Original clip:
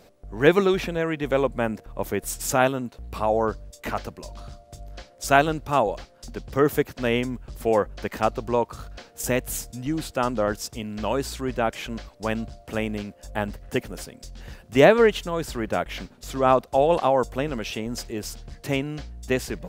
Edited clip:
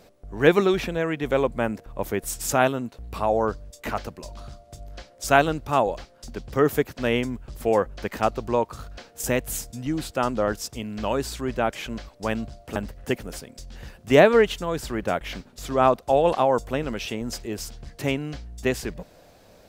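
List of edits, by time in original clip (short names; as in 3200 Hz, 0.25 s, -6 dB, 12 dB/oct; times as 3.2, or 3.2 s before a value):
12.76–13.41 cut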